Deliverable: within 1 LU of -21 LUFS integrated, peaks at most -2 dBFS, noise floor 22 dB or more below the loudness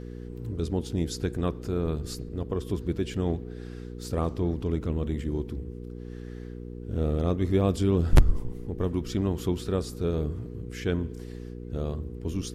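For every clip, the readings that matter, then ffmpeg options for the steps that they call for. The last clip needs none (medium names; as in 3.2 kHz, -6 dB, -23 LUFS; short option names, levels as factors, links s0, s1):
hum 60 Hz; highest harmonic 480 Hz; hum level -36 dBFS; loudness -29.5 LUFS; peak level -9.5 dBFS; loudness target -21.0 LUFS
-> -af "bandreject=f=60:t=h:w=4,bandreject=f=120:t=h:w=4,bandreject=f=180:t=h:w=4,bandreject=f=240:t=h:w=4,bandreject=f=300:t=h:w=4,bandreject=f=360:t=h:w=4,bandreject=f=420:t=h:w=4,bandreject=f=480:t=h:w=4"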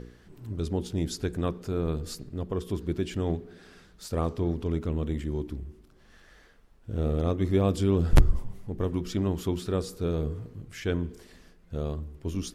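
hum not found; loudness -30.0 LUFS; peak level -9.0 dBFS; loudness target -21.0 LUFS
-> -af "volume=2.82,alimiter=limit=0.794:level=0:latency=1"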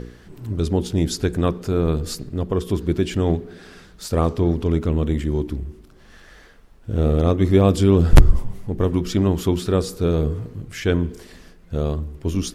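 loudness -21.0 LUFS; peak level -2.0 dBFS; noise floor -48 dBFS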